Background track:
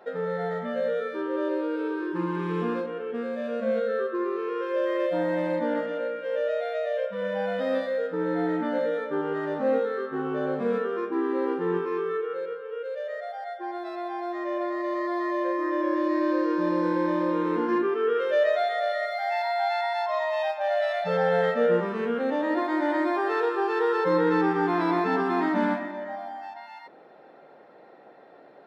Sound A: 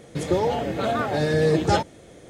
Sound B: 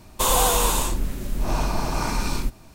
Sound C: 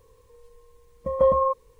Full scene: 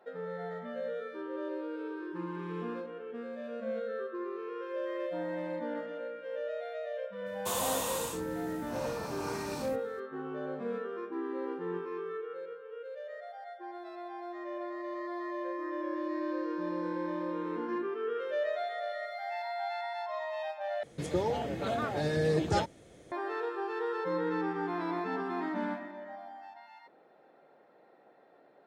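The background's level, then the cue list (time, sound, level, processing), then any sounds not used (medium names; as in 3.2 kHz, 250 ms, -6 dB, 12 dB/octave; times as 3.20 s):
background track -10 dB
7.26 s: add B -13 dB + high-pass 82 Hz 24 dB/octave
20.83 s: replace with A -8.5 dB
not used: C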